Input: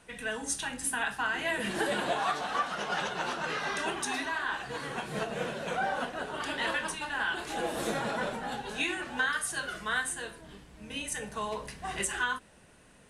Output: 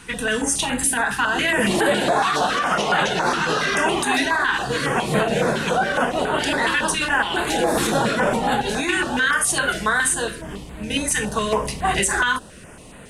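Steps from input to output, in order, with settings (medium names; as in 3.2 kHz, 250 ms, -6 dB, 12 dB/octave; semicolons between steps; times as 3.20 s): loudness maximiser +25 dB; step-sequenced notch 7.2 Hz 620–5500 Hz; trim -8 dB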